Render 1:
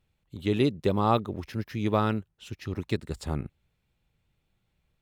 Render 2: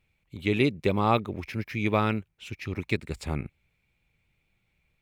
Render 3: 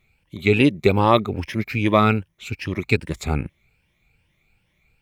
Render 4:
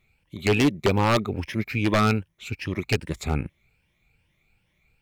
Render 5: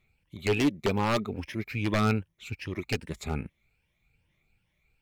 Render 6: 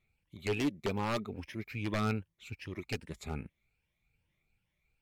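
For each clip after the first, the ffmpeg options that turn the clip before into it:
-af "equalizer=f=2.3k:w=4:g=14"
-af "afftfilt=real='re*pow(10,10/40*sin(2*PI*(1.2*log(max(b,1)*sr/1024/100)/log(2)-(2.5)*(pts-256)/sr)))':imag='im*pow(10,10/40*sin(2*PI*(1.2*log(max(b,1)*sr/1024/100)/log(2)-(2.5)*(pts-256)/sr)))':win_size=1024:overlap=0.75,volume=6.5dB"
-af "aeval=exprs='0.299*(abs(mod(val(0)/0.299+3,4)-2)-1)':c=same,volume=-2.5dB"
-af "aphaser=in_gain=1:out_gain=1:delay=4.9:decay=0.27:speed=0.46:type=sinusoidal,volume=-6dB"
-af "volume=-6.5dB" -ar 48000 -c:a libmp3lame -b:a 96k

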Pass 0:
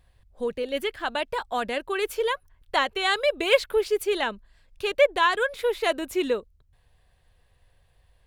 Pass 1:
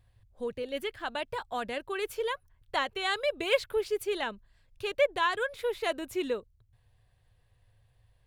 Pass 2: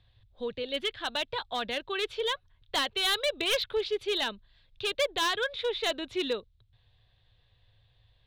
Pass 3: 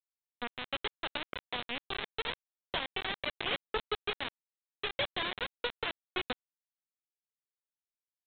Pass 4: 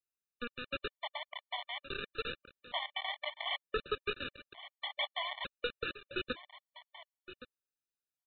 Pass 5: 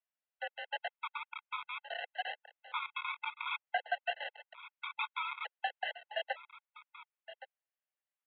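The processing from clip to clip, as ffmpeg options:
-af "equalizer=f=110:w=3.3:g=14.5,volume=-6.5dB"
-filter_complex "[0:a]lowpass=f=3.7k:t=q:w=5.2,acrossover=split=120[a][b];[b]volume=23dB,asoftclip=hard,volume=-23dB[c];[a][c]amix=inputs=2:normalize=0"
-af "acompressor=threshold=-34dB:ratio=3,aresample=8000,acrusher=bits=4:mix=0:aa=0.000001,aresample=44100"
-af "aecho=1:1:1119:0.2,afftfilt=real='re*gt(sin(2*PI*0.55*pts/sr)*(1-2*mod(floor(b*sr/1024/590),2)),0)':imag='im*gt(sin(2*PI*0.55*pts/sr)*(1-2*mod(floor(b*sr/1024/590),2)),0)':win_size=1024:overlap=0.75"
-af "highpass=f=220:t=q:w=0.5412,highpass=f=220:t=q:w=1.307,lowpass=f=2.7k:t=q:w=0.5176,lowpass=f=2.7k:t=q:w=0.7071,lowpass=f=2.7k:t=q:w=1.932,afreqshift=290,volume=1.5dB"

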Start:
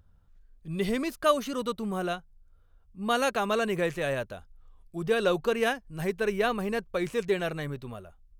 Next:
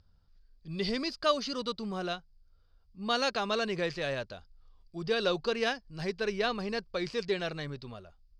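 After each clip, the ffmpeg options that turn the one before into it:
-af "lowpass=f=4.8k:t=q:w=10,volume=-4.5dB"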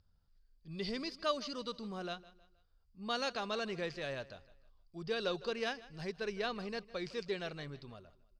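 -af "aecho=1:1:157|314|471:0.112|0.0426|0.0162,volume=-7dB"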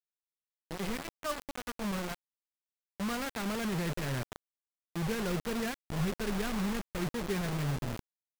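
-af "lowpass=f=2.2k:w=0.5412,lowpass=f=2.2k:w=1.3066,asubboost=boost=10:cutoff=190,acrusher=bits=5:mix=0:aa=0.000001"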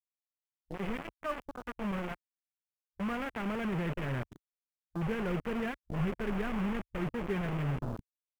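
-af "afwtdn=0.00708"

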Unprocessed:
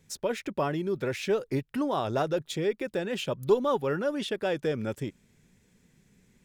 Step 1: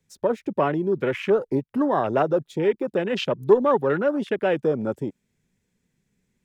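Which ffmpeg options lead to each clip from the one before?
-filter_complex "[0:a]afwtdn=0.0126,acrossover=split=150|660|6500[a][b][c][d];[a]acompressor=threshold=-51dB:ratio=6[e];[e][b][c][d]amix=inputs=4:normalize=0,volume=7dB"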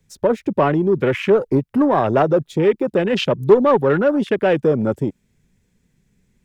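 -filter_complex "[0:a]lowshelf=f=110:g=10,asplit=2[a][b];[b]asoftclip=type=tanh:threshold=-18.5dB,volume=-4dB[c];[a][c]amix=inputs=2:normalize=0,volume=2dB"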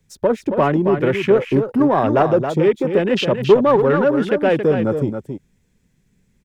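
-af "aecho=1:1:274:0.422"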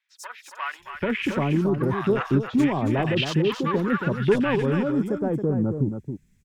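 -filter_complex "[0:a]equalizer=f=560:w=0.97:g=-12.5,acrossover=split=1000|3900[a][b][c];[c]adelay=90[d];[a]adelay=790[e];[e][b][d]amix=inputs=3:normalize=0"

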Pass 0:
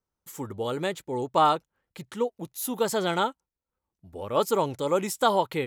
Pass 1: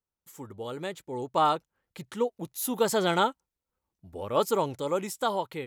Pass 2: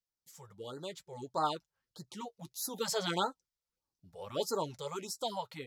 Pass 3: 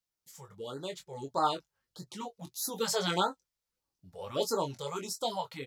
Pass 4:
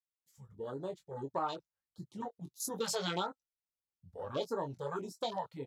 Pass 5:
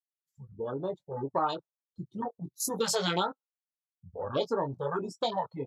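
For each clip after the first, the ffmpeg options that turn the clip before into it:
-af "dynaudnorm=f=390:g=7:m=11.5dB,volume=-7.5dB"
-af "equalizer=f=5.1k:t=o:w=0.98:g=11,flanger=delay=5.7:depth=1.9:regen=-43:speed=1.9:shape=sinusoidal,afftfilt=real='re*(1-between(b*sr/1024,250*pow(2800/250,0.5+0.5*sin(2*PI*1.6*pts/sr))/1.41,250*pow(2800/250,0.5+0.5*sin(2*PI*1.6*pts/sr))*1.41))':imag='im*(1-between(b*sr/1024,250*pow(2800/250,0.5+0.5*sin(2*PI*1.6*pts/sr))/1.41,250*pow(2800/250,0.5+0.5*sin(2*PI*1.6*pts/sr))*1.41))':win_size=1024:overlap=0.75,volume=-4.5dB"
-filter_complex "[0:a]asplit=2[a][b];[b]adelay=22,volume=-7dB[c];[a][c]amix=inputs=2:normalize=0,volume=2.5dB"
-af "afwtdn=0.00891,acompressor=threshold=-32dB:ratio=5"
-af "afftdn=nr=24:nf=-56,volume=6.5dB"

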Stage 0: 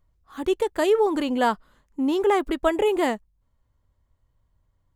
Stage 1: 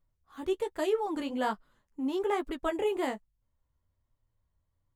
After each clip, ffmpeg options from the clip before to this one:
-af "flanger=delay=6.6:depth=8.6:regen=-22:speed=1.2:shape=triangular,volume=-5.5dB"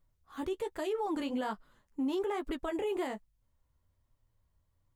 -af "alimiter=level_in=5.5dB:limit=-24dB:level=0:latency=1:release=103,volume=-5.5dB,volume=3dB"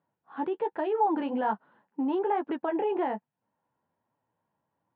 -af "highpass=f=190:w=0.5412,highpass=f=190:w=1.3066,equalizer=f=260:t=q:w=4:g=-5,equalizer=f=390:t=q:w=4:g=-4,equalizer=f=570:t=q:w=4:g=-4,equalizer=f=860:t=q:w=4:g=6,equalizer=f=1.2k:t=q:w=4:g=-8,equalizer=f=2.1k:t=q:w=4:g=-9,lowpass=f=2.2k:w=0.5412,lowpass=f=2.2k:w=1.3066,volume=8.5dB"

